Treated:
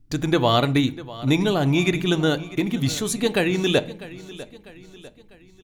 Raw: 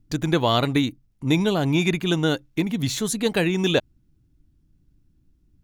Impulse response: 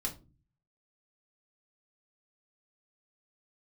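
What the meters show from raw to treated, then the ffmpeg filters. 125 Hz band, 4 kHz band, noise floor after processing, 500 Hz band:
+1.0 dB, +1.0 dB, −51 dBFS, +1.5 dB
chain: -filter_complex "[0:a]aecho=1:1:648|1296|1944|2592:0.133|0.0627|0.0295|0.0138,asplit=2[link_01][link_02];[1:a]atrim=start_sample=2205,asetrate=24696,aresample=44100,highshelf=frequency=5100:gain=-9[link_03];[link_02][link_03]afir=irnorm=-1:irlink=0,volume=-15dB[link_04];[link_01][link_04]amix=inputs=2:normalize=0"

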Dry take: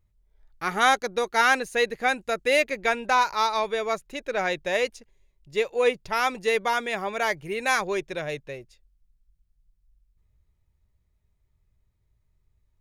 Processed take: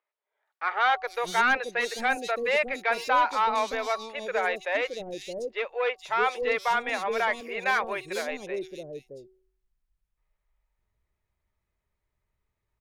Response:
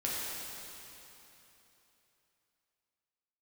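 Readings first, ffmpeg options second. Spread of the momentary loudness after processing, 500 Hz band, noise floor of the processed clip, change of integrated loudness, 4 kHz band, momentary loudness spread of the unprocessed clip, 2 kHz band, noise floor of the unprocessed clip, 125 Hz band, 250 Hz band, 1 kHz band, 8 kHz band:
11 LU, −3.0 dB, −83 dBFS, −2.5 dB, −4.0 dB, 10 LU, −1.5 dB, −71 dBFS, −8.0 dB, −4.5 dB, −1.0 dB, −6.0 dB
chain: -filter_complex "[0:a]bass=frequency=250:gain=-15,treble=frequency=4000:gain=-8,bandreject=frequency=375.8:width_type=h:width=4,bandreject=frequency=751.6:width_type=h:width=4,bandreject=frequency=1127.4:width_type=h:width=4,asoftclip=type=tanh:threshold=-18dB,acrossover=split=470|3800[link_01][link_02][link_03];[link_03]adelay=460[link_04];[link_01]adelay=620[link_05];[link_05][link_02][link_04]amix=inputs=3:normalize=0,volume=2.5dB"

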